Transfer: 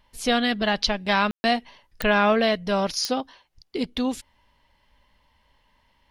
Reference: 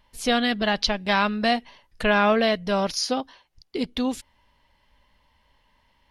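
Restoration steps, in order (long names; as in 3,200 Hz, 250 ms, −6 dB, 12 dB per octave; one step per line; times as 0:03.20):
click removal
ambience match 0:01.31–0:01.44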